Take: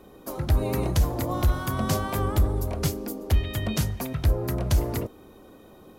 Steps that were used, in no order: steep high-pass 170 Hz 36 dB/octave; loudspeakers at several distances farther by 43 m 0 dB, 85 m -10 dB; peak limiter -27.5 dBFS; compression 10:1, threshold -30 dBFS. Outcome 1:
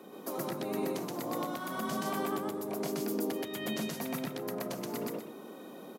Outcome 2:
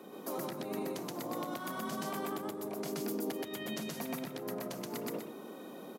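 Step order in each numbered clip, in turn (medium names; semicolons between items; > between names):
compression > steep high-pass > peak limiter > loudspeakers at several distances; compression > loudspeakers at several distances > peak limiter > steep high-pass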